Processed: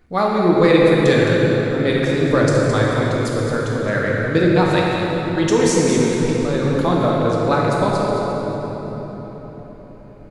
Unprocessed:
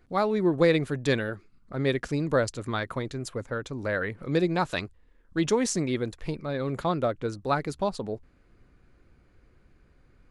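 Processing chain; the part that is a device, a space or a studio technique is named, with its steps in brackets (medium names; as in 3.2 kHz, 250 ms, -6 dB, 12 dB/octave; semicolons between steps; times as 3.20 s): cave (delay 216 ms -9 dB; reverberation RT60 4.5 s, pre-delay 4 ms, DRR -3.5 dB); trim +5 dB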